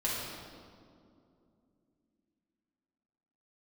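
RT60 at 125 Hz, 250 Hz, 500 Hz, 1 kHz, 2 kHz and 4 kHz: 3.2, 4.0, 2.8, 2.2, 1.5, 1.4 s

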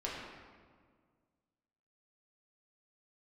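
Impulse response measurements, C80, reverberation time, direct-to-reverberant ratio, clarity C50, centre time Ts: 2.0 dB, 1.8 s, -6.0 dB, 0.0 dB, 90 ms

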